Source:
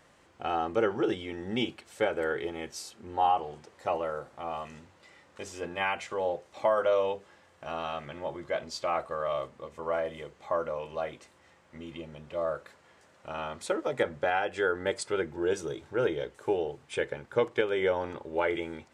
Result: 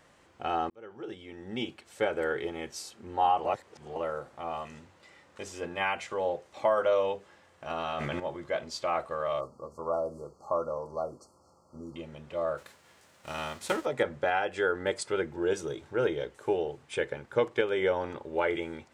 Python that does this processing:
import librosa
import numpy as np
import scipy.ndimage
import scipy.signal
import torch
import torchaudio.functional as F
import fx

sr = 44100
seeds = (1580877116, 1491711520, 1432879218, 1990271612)

y = fx.env_flatten(x, sr, amount_pct=100, at=(7.7, 8.2))
y = fx.brickwall_bandstop(y, sr, low_hz=1400.0, high_hz=4200.0, at=(9.39, 11.95), fade=0.02)
y = fx.envelope_flatten(y, sr, power=0.6, at=(12.57, 13.84), fade=0.02)
y = fx.edit(y, sr, fx.fade_in_span(start_s=0.7, length_s=1.47),
    fx.reverse_span(start_s=3.45, length_s=0.51), tone=tone)